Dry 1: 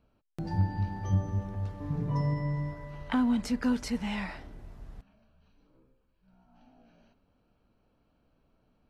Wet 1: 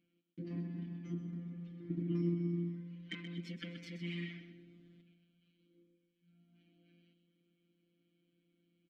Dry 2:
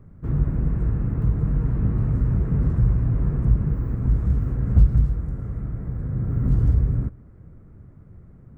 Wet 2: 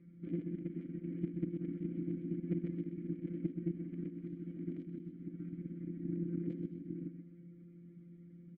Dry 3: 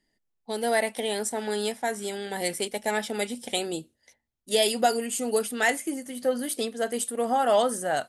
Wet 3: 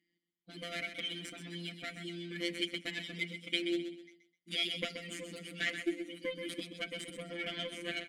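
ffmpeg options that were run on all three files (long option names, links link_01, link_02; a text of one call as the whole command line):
ffmpeg -i in.wav -filter_complex "[0:a]acompressor=threshold=-25dB:ratio=3,afftfilt=real='hypot(re,im)*cos(PI*b)':imag='0':win_size=1024:overlap=0.75,aeval=exprs='0.211*(cos(1*acos(clip(val(0)/0.211,-1,1)))-cos(1*PI/2))+0.00596*(cos(3*acos(clip(val(0)/0.211,-1,1)))-cos(3*PI/2))+0.0299*(cos(8*acos(clip(val(0)/0.211,-1,1)))-cos(8*PI/2))':channel_layout=same,asplit=3[link_01][link_02][link_03];[link_01]bandpass=frequency=270:width_type=q:width=8,volume=0dB[link_04];[link_02]bandpass=frequency=2290:width_type=q:width=8,volume=-6dB[link_05];[link_03]bandpass=frequency=3010:width_type=q:width=8,volume=-9dB[link_06];[link_04][link_05][link_06]amix=inputs=3:normalize=0,aecho=1:1:128|256|384|512:0.355|0.11|0.0341|0.0106,volume=13.5dB" out.wav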